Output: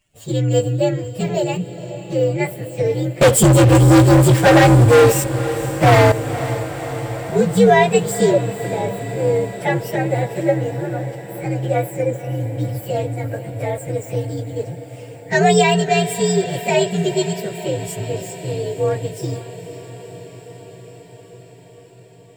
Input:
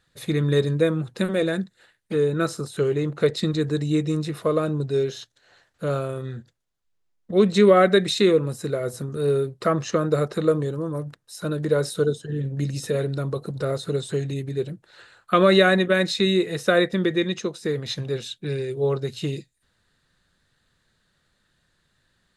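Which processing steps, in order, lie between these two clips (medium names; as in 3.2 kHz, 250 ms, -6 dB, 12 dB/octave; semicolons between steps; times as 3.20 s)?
frequency axis rescaled in octaves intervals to 126%; 3.21–6.12 s: waveshaping leveller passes 5; echo that smears into a reverb 507 ms, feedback 74%, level -13.5 dB; trim +4.5 dB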